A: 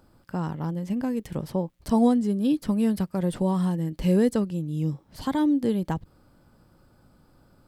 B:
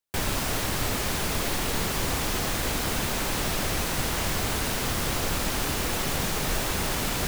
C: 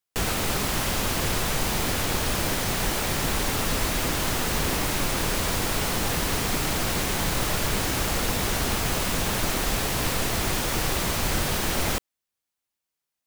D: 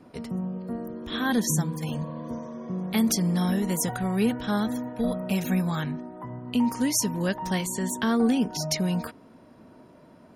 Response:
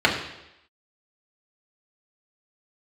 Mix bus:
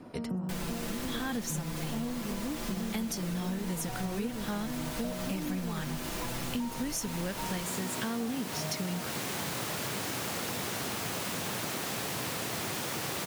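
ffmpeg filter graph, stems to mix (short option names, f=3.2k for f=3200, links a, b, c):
-filter_complex "[0:a]equalizer=f=240:w=0.45:g=9.5,volume=-14dB,asplit=2[a][b];[1:a]aecho=1:1:5.9:0.65,adelay=350,volume=-5.5dB[c];[2:a]highpass=f=110:w=0.5412,highpass=f=110:w=1.3066,adelay=2200,volume=-1.5dB[d];[3:a]volume=2.5dB[e];[b]apad=whole_len=682018[f];[d][f]sidechaincompress=threshold=-56dB:ratio=8:attack=16:release=921[g];[a][c][g][e]amix=inputs=4:normalize=0,acompressor=threshold=-32dB:ratio=6"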